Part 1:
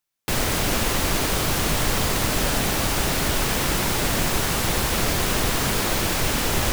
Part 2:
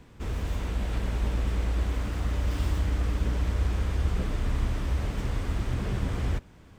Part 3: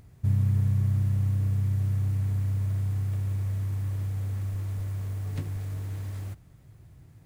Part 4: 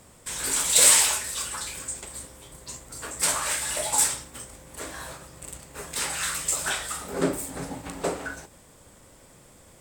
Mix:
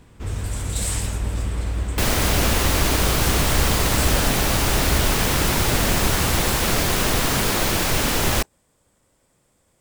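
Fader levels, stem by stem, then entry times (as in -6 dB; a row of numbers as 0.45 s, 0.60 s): +2.0 dB, +2.0 dB, -8.5 dB, -12.0 dB; 1.70 s, 0.00 s, 0.00 s, 0.00 s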